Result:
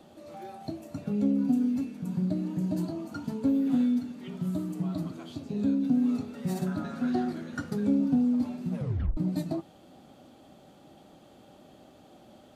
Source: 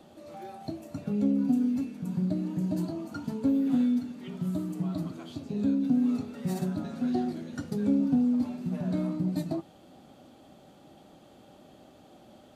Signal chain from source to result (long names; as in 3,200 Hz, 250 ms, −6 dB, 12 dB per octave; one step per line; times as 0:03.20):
0:06.66–0:07.80: parametric band 1,400 Hz +8.5 dB 0.94 octaves
0:08.75: tape stop 0.42 s